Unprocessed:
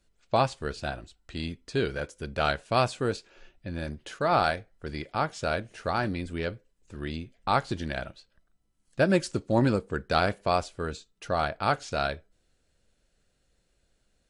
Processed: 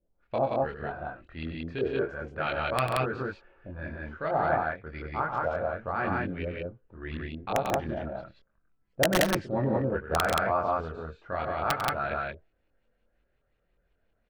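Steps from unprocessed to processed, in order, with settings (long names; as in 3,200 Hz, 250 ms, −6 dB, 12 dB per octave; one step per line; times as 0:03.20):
auto-filter low-pass saw up 2.8 Hz 460–2,800 Hz
multi-voice chorus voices 2, 0.33 Hz, delay 24 ms, depth 2.2 ms
wrap-around overflow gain 11.5 dB
on a send: loudspeakers that aren't time-aligned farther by 33 metres −10 dB, 47 metres −11 dB, 61 metres −1 dB
on the sum: level −3.5 dB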